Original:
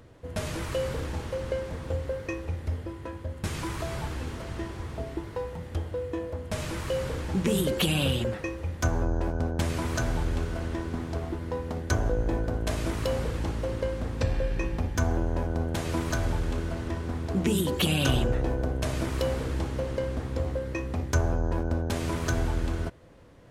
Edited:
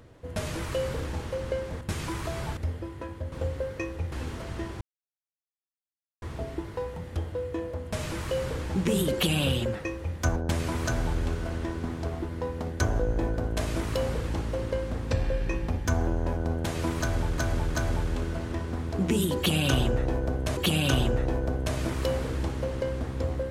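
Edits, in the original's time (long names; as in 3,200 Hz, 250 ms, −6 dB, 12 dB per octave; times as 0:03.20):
0:01.81–0:02.61: swap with 0:03.36–0:04.12
0:04.81: splice in silence 1.41 s
0:08.95–0:09.46: remove
0:16.11–0:16.48: repeat, 3 plays
0:17.73–0:18.93: repeat, 2 plays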